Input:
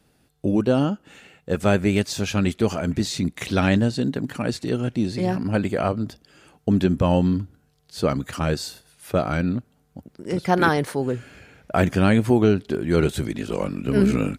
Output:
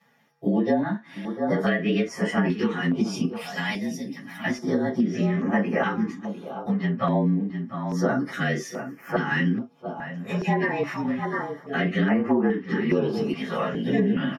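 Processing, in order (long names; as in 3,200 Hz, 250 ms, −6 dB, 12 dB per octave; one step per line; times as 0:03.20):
partials spread apart or drawn together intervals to 110%
0:03.25–0:04.44: first-order pre-emphasis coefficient 0.8
slap from a distant wall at 120 metres, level −13 dB
convolution reverb, pre-delay 3 ms, DRR −3 dB
treble cut that deepens with the level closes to 2,300 Hz, closed at −1.5 dBFS
low-shelf EQ 230 Hz −10 dB
downward compressor 6 to 1, threshold −14 dBFS, peak gain reduction 11 dB
notch on a step sequencer 2.4 Hz 320–3,700 Hz
level −4 dB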